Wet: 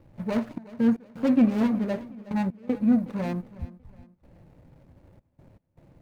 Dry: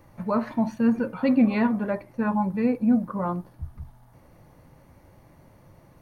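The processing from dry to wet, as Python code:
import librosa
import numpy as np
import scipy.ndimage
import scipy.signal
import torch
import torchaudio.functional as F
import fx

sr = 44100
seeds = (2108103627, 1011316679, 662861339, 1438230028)

y = scipy.signal.medfilt(x, 41)
y = fx.step_gate(y, sr, bpm=78, pattern='xxx.x.xx', floor_db=-24.0, edge_ms=4.5)
y = fx.echo_feedback(y, sr, ms=367, feedback_pct=36, wet_db=-18.5)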